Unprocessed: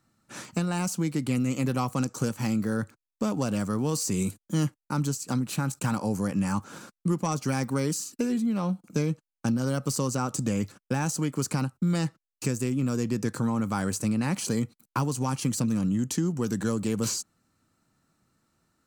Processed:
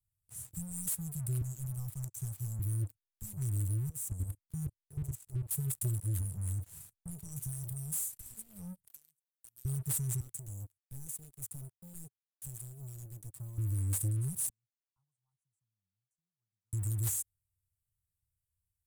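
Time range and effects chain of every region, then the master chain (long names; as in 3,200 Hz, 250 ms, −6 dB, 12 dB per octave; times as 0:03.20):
0:01.41–0:02.59: three-way crossover with the lows and the highs turned down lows −12 dB, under 240 Hz, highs −12 dB, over 6,000 Hz + leveller curve on the samples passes 1
0:03.89–0:05.51: high-shelf EQ 4,700 Hz −9 dB + output level in coarse steps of 13 dB
0:06.21–0:08.26: downward compressor 2 to 1, threshold −31 dBFS + double-tracking delay 34 ms −11 dB
0:08.87–0:09.65: high-pass filter 680 Hz + high-shelf EQ 11,000 Hz +7 dB + downward compressor 2.5 to 1, threshold −51 dBFS
0:10.20–0:13.58: mu-law and A-law mismatch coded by A + bass and treble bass −14 dB, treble −9 dB + gain into a clipping stage and back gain 25.5 dB
0:14.49–0:16.73: four-pole ladder band-pass 880 Hz, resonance 25% + multiband upward and downward expander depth 70%
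whole clip: inverse Chebyshev band-stop filter 240–4,500 Hz, stop band 50 dB; leveller curve on the samples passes 3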